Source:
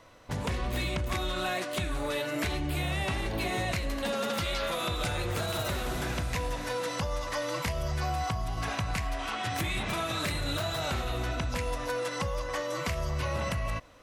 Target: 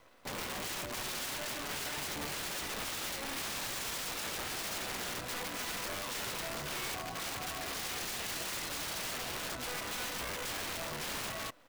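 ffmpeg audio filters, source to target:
-filter_complex "[0:a]acrossover=split=150 5300:gain=0.0708 1 0.0794[a][b][c];[a][b][c]amix=inputs=3:normalize=0,acrossover=split=850|3500[d][e][f];[f]alimiter=level_in=16dB:limit=-24dB:level=0:latency=1:release=108,volume=-16dB[g];[d][e][g]amix=inputs=3:normalize=0,aeval=exprs='(mod(39.8*val(0)+1,2)-1)/39.8':c=same,atempo=1.2,acrusher=bits=8:dc=4:mix=0:aa=0.000001,volume=-1.5dB"

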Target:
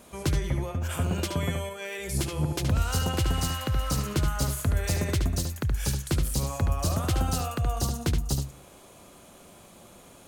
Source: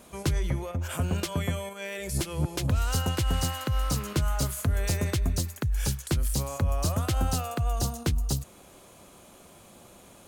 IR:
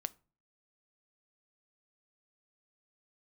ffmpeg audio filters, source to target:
-filter_complex "[0:a]asplit=2[a][b];[1:a]atrim=start_sample=2205,highshelf=f=11k:g=-11,adelay=73[c];[b][c]afir=irnorm=-1:irlink=0,volume=-4dB[d];[a][d]amix=inputs=2:normalize=0"

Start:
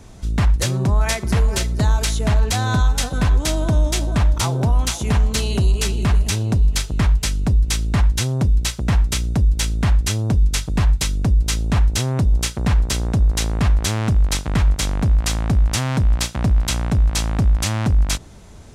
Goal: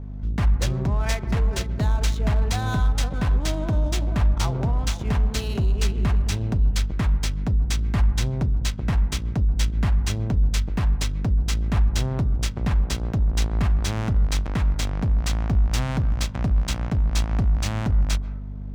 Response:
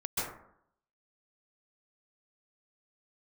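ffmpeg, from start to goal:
-filter_complex "[0:a]aeval=exprs='val(0)+0.0447*(sin(2*PI*50*n/s)+sin(2*PI*2*50*n/s)/2+sin(2*PI*3*50*n/s)/3+sin(2*PI*4*50*n/s)/4+sin(2*PI*5*50*n/s)/5)':c=same,adynamicsmooth=sensitivity=5:basefreq=1.2k,asplit=2[a][b];[1:a]atrim=start_sample=2205,lowpass=2.1k[c];[b][c]afir=irnorm=-1:irlink=0,volume=-20dB[d];[a][d]amix=inputs=2:normalize=0,volume=-6dB"

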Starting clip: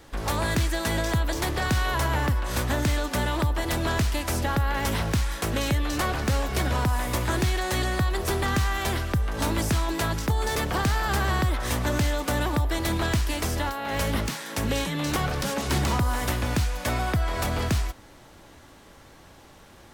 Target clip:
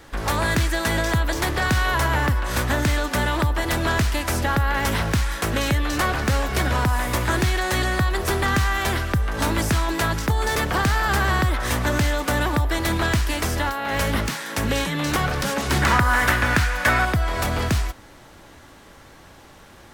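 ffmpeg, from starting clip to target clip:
-af "asetnsamples=n=441:p=0,asendcmd='15.82 equalizer g 14;17.05 equalizer g 2.5',equalizer=f=1.6k:w=1.2:g=4,volume=3dB"

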